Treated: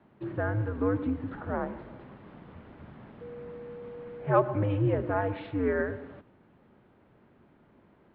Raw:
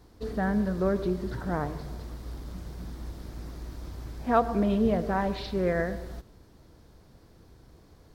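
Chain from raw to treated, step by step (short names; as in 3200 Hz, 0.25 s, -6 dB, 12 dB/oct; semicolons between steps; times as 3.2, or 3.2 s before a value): 3.2–4.39 whine 580 Hz -40 dBFS; mistuned SSB -100 Hz 210–2900 Hz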